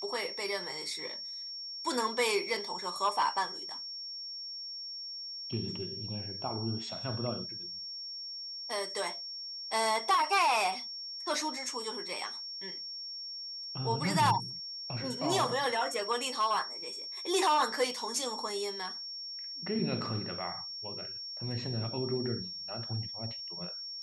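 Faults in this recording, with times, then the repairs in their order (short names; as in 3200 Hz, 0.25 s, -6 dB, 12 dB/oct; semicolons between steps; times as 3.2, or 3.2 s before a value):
tone 5500 Hz -39 dBFS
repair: notch 5500 Hz, Q 30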